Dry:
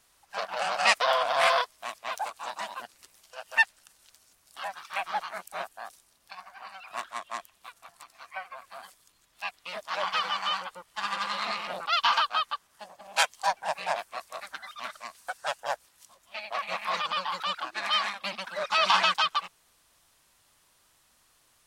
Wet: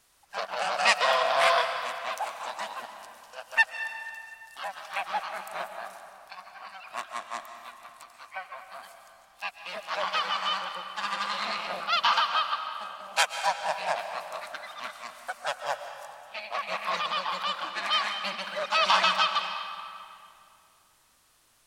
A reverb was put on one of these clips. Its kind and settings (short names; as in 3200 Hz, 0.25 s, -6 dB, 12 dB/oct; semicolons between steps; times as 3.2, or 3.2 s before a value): digital reverb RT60 2.5 s, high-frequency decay 0.75×, pre-delay 95 ms, DRR 7 dB